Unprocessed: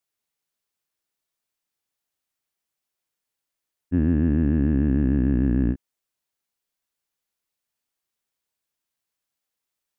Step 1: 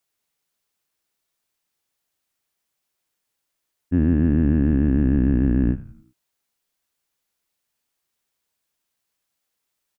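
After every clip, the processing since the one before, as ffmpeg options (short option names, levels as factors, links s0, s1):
-filter_complex "[0:a]asplit=2[s0][s1];[s1]alimiter=limit=0.0841:level=0:latency=1:release=207,volume=0.891[s2];[s0][s2]amix=inputs=2:normalize=0,asplit=5[s3][s4][s5][s6][s7];[s4]adelay=92,afreqshift=-95,volume=0.158[s8];[s5]adelay=184,afreqshift=-190,volume=0.0684[s9];[s6]adelay=276,afreqshift=-285,volume=0.0292[s10];[s7]adelay=368,afreqshift=-380,volume=0.0126[s11];[s3][s8][s9][s10][s11]amix=inputs=5:normalize=0"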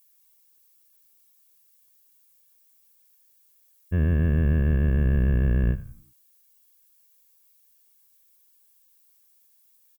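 -af "aemphasis=mode=production:type=75fm,aecho=1:1:1.8:0.97,volume=0.668"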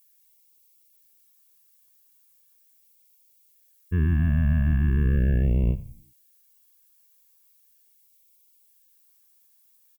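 -af "afftfilt=real='re*(1-between(b*sr/1024,400*pow(1500/400,0.5+0.5*sin(2*PI*0.39*pts/sr))/1.41,400*pow(1500/400,0.5+0.5*sin(2*PI*0.39*pts/sr))*1.41))':imag='im*(1-between(b*sr/1024,400*pow(1500/400,0.5+0.5*sin(2*PI*0.39*pts/sr))/1.41,400*pow(1500/400,0.5+0.5*sin(2*PI*0.39*pts/sr))*1.41))':win_size=1024:overlap=0.75"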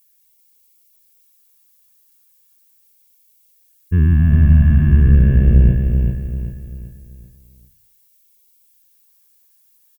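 -filter_complex "[0:a]bass=f=250:g=6,treble=f=4000:g=0,asplit=2[s0][s1];[s1]aecho=0:1:388|776|1164|1552|1940:0.562|0.225|0.09|0.036|0.0144[s2];[s0][s2]amix=inputs=2:normalize=0,volume=1.5"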